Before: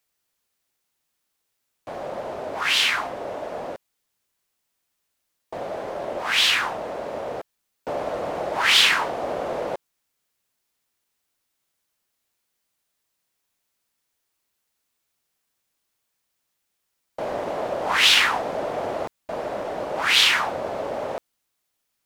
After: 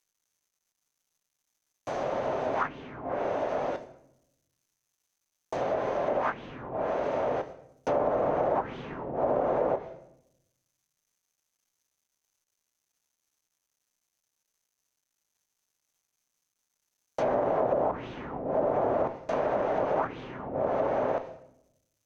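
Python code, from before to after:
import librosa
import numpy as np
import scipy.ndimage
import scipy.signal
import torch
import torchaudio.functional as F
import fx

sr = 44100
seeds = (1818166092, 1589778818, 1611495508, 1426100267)

y = fx.comb_fb(x, sr, f0_hz=130.0, decay_s=0.17, harmonics='all', damping=0.0, mix_pct=50)
y = fx.quant_dither(y, sr, seeds[0], bits=12, dither='none')
y = fx.peak_eq(y, sr, hz=6200.0, db=13.0, octaves=0.21)
y = fx.room_shoebox(y, sr, seeds[1], volume_m3=220.0, walls='mixed', distance_m=0.35)
y = fx.env_lowpass_down(y, sr, base_hz=340.0, full_db=-23.5)
y = y * librosa.db_to_amplitude(5.0)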